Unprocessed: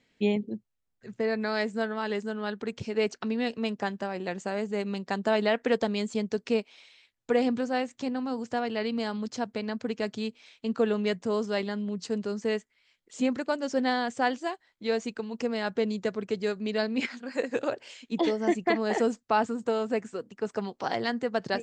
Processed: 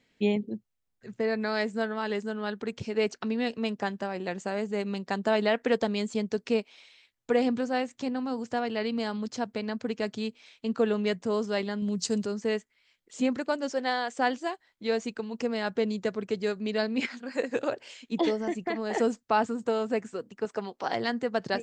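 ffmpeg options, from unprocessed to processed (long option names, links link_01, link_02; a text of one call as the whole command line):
ffmpeg -i in.wav -filter_complex "[0:a]asettb=1/sr,asplit=3[link_01][link_02][link_03];[link_01]atrim=end=11.824[link_04];[link_02]atrim=start=11.82:end=12.26,asetpts=PTS-STARTPTS,afade=type=in:duration=0.004:curve=qsin,afade=type=out:start_time=0.436:duration=0.004:curve=qsin,bass=frequency=250:gain=5,treble=frequency=4000:gain=13[link_05];[link_03]atrim=start=12.256[link_06];[link_04][link_05]acrossfade=duration=0.004:curve1=hsin:curve2=qsin[link_07];[link_07][link_06]acrossfade=duration=0.004:curve1=qsin:curve2=hsin,asettb=1/sr,asplit=3[link_08][link_09][link_10];[link_08]atrim=end=13.704[link_11];[link_09]atrim=start=13.7:end=14.19,asetpts=PTS-STARTPTS,afade=type=in:duration=0.004:curve=qsin,afade=type=out:start_time=0.486:duration=0.004:curve=qsin,highpass=410[link_12];[link_10]atrim=start=14.186[link_13];[link_11][link_12]acrossfade=duration=0.004:curve1=hsin:curve2=qsin[link_14];[link_14][link_13]acrossfade=duration=0.004:curve1=qsin:curve2=hsin,asettb=1/sr,asplit=3[link_15][link_16][link_17];[link_15]atrim=end=18.414[link_18];[link_16]atrim=start=18.41:end=18.94,asetpts=PTS-STARTPTS,afade=type=in:duration=0.004:curve=qsin,afade=type=out:start_time=0.526:duration=0.004:curve=qsin,acompressor=threshold=-30dB:ratio=2:attack=3.2:release=140:knee=1:detection=peak[link_19];[link_17]atrim=start=18.936[link_20];[link_18][link_19]acrossfade=duration=0.004:curve1=hsin:curve2=qsin[link_21];[link_21][link_20]acrossfade=duration=0.004:curve1=qsin:curve2=hsin,asettb=1/sr,asplit=3[link_22][link_23][link_24];[link_22]atrim=end=20.454[link_25];[link_23]atrim=start=20.45:end=20.93,asetpts=PTS-STARTPTS,afade=type=in:duration=0.004:curve=qsin,afade=type=out:start_time=0.476:duration=0.004:curve=qsin,bass=frequency=250:gain=-7,treble=frequency=4000:gain=-2[link_26];[link_24]atrim=start=20.926[link_27];[link_25][link_26]acrossfade=duration=0.004:curve1=hsin:curve2=qsin[link_28];[link_28][link_27]acrossfade=duration=0.004:curve1=qsin:curve2=hsin" out.wav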